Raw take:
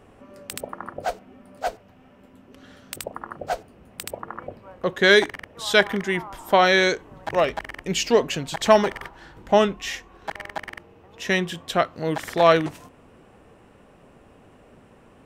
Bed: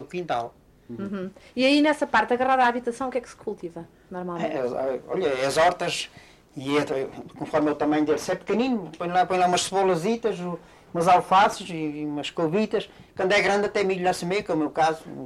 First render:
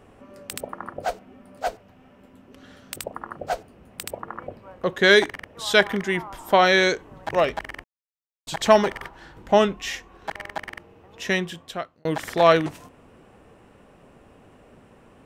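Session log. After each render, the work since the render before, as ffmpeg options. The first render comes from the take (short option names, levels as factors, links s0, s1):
-filter_complex "[0:a]asplit=4[s0][s1][s2][s3];[s0]atrim=end=7.84,asetpts=PTS-STARTPTS,afade=t=out:st=7.836:d=0.004:c=hsin[s4];[s1]atrim=start=7.84:end=8.47,asetpts=PTS-STARTPTS,volume=0[s5];[s2]atrim=start=8.47:end=12.05,asetpts=PTS-STARTPTS,afade=t=in:d=0.004:c=hsin,afade=t=out:st=2.76:d=0.82[s6];[s3]atrim=start=12.05,asetpts=PTS-STARTPTS,afade=t=in:d=0.004:c=hsin[s7];[s4][s5][s6][s7]concat=n=4:v=0:a=1"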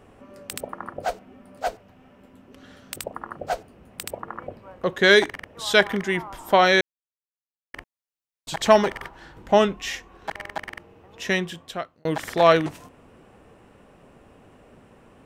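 -filter_complex "[0:a]asplit=3[s0][s1][s2];[s0]atrim=end=6.81,asetpts=PTS-STARTPTS,afade=t=out:st=6.806:d=0.004:c=hsin[s3];[s1]atrim=start=6.81:end=7.74,asetpts=PTS-STARTPTS,volume=0[s4];[s2]atrim=start=7.74,asetpts=PTS-STARTPTS,afade=t=in:d=0.004:c=hsin[s5];[s3][s4][s5]concat=n=3:v=0:a=1"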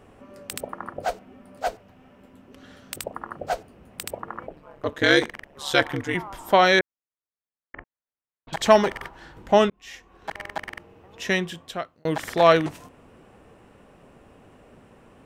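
-filter_complex "[0:a]asettb=1/sr,asplit=3[s0][s1][s2];[s0]atrim=end=4.464[s3];[s1]atrim=start=4.46:end=6.15,asetpts=PTS-STARTPTS,afade=t=in:d=0.004:c=qsin,afade=t=out:st=1.686:d=0.004:c=qsin,aeval=exprs='val(0)*sin(2*PI*72*n/s)':c=same[s4];[s2]atrim=start=6.146[s5];[s3][s4]acrossfade=d=0.004:c1=hsin:c2=qsin[s6];[s6][s5]acrossfade=d=0.004:c1=qsin:c2=hsin,asettb=1/sr,asplit=3[s7][s8][s9];[s7]atrim=end=6.794[s10];[s8]atrim=start=6.79:end=8.53,asetpts=PTS-STARTPTS,afade=t=in:d=0.004:c=qsin,afade=t=out:st=1.736:d=0.004:c=qsin,lowpass=f=2000:w=0.5412,lowpass=f=2000:w=1.3066[s11];[s9]atrim=start=8.526[s12];[s10][s11]acrossfade=d=0.004:c1=hsin:c2=qsin[s13];[s13][s12]acrossfade=d=0.004:c1=qsin:c2=hsin,asplit=2[s14][s15];[s14]atrim=end=9.7,asetpts=PTS-STARTPTS,afade=t=out:st=9.696:d=0.004:c=hsin[s16];[s15]atrim=start=9.7,asetpts=PTS-STARTPTS,afade=t=in:d=0.73[s17];[s16][s17]concat=n=2:v=0:a=1"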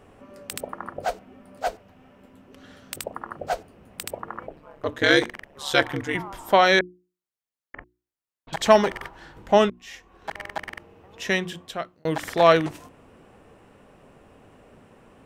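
-af "bandreject=f=60:t=h:w=6,bandreject=f=120:t=h:w=6,bandreject=f=180:t=h:w=6,bandreject=f=240:t=h:w=6,bandreject=f=300:t=h:w=6,bandreject=f=360:t=h:w=6"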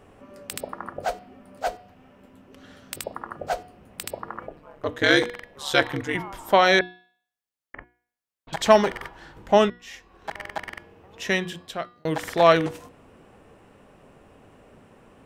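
-af "bandreject=f=241.8:t=h:w=4,bandreject=f=483.6:t=h:w=4,bandreject=f=725.4:t=h:w=4,bandreject=f=967.2:t=h:w=4,bandreject=f=1209:t=h:w=4,bandreject=f=1450.8:t=h:w=4,bandreject=f=1692.6:t=h:w=4,bandreject=f=1934.4:t=h:w=4,bandreject=f=2176.2:t=h:w=4,bandreject=f=2418:t=h:w=4,bandreject=f=2659.8:t=h:w=4,bandreject=f=2901.6:t=h:w=4,bandreject=f=3143.4:t=h:w=4,bandreject=f=3385.2:t=h:w=4,bandreject=f=3627:t=h:w=4,bandreject=f=3868.8:t=h:w=4,bandreject=f=4110.6:t=h:w=4,bandreject=f=4352.4:t=h:w=4,bandreject=f=4594.2:t=h:w=4,bandreject=f=4836:t=h:w=4,bandreject=f=5077.8:t=h:w=4,bandreject=f=5319.6:t=h:w=4"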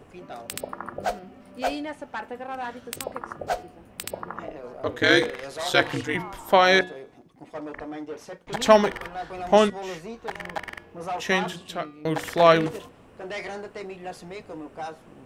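-filter_complex "[1:a]volume=0.211[s0];[0:a][s0]amix=inputs=2:normalize=0"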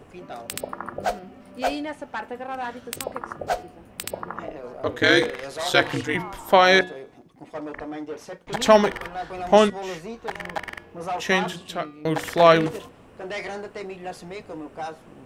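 -af "volume=1.26,alimiter=limit=0.708:level=0:latency=1"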